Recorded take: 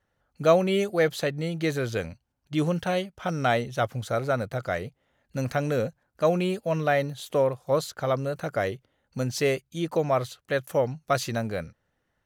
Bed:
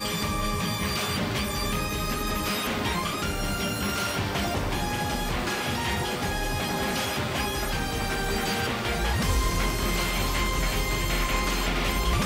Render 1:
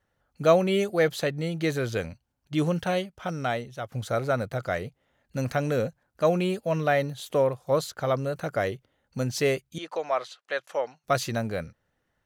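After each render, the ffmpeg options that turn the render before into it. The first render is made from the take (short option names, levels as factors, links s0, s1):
-filter_complex "[0:a]asettb=1/sr,asplit=3[s0][s1][s2];[s0]atrim=end=9.784[s3];[s1]atrim=start=9.78:end=11.04,asetpts=PTS-STARTPTS,afade=t=in:d=0.004:c=qsin,afade=t=out:st=1.256:d=0.004:c=qsin,highpass=630,lowpass=5700[s4];[s2]atrim=start=11.036[s5];[s3][s4]acrossfade=d=0.004:c1=hsin:c2=qsin[s6];[s6][s5]acrossfade=d=0.004:c1=qsin:c2=hsin,asplit=2[s7][s8];[s7]atrim=end=3.92,asetpts=PTS-STARTPTS,afade=t=out:st=2.93:d=0.99:silence=0.266073[s9];[s8]atrim=start=3.92,asetpts=PTS-STARTPTS,afade=t=in:d=0.004:c=hsin:silence=0.266073[s10];[s9][s10]concat=n=2:v=0:a=1"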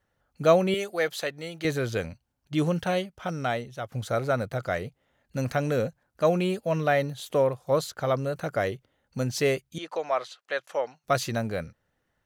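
-filter_complex "[0:a]asettb=1/sr,asplit=3[s0][s1][s2];[s0]atrim=end=0.744[s3];[s1]atrim=start=0.74:end=1.65,asetpts=PTS-STARTPTS,afade=t=in:d=0.004:c=qsin,afade=t=out:st=0.906:d=0.004:c=qsin,highpass=f=680:p=1[s4];[s2]atrim=start=1.646[s5];[s3][s4]acrossfade=d=0.004:c1=hsin:c2=qsin[s6];[s6][s5]acrossfade=d=0.004:c1=qsin:c2=hsin"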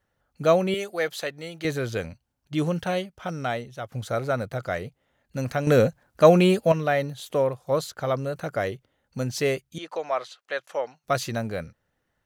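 -filter_complex "[0:a]asplit=3[s0][s1][s2];[s0]atrim=end=5.672[s3];[s1]atrim=start=5.668:end=6.722,asetpts=PTS-STARTPTS,volume=2.51[s4];[s2]atrim=start=6.718[s5];[s3][s4]acrossfade=d=0.004:c1=hsin:c2=hsin[s6];[s6][s5]acrossfade=d=0.004:c1=hsin:c2=hsin"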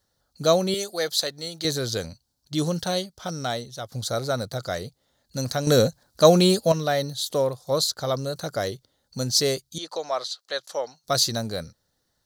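-af "highshelf=f=3300:t=q:w=3:g=9"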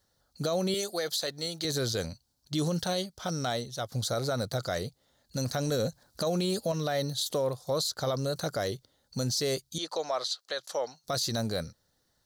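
-af "acompressor=threshold=0.0631:ratio=2,alimiter=limit=0.0891:level=0:latency=1:release=27"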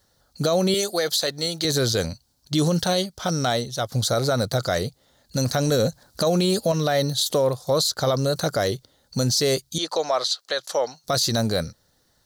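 -af "volume=2.66"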